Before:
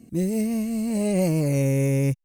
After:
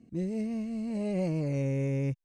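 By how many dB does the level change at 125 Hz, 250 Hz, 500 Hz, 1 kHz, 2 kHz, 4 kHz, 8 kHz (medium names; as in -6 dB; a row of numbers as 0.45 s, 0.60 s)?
-8.0 dB, -8.0 dB, -8.5 dB, -8.5 dB, -9.5 dB, -12.0 dB, under -15 dB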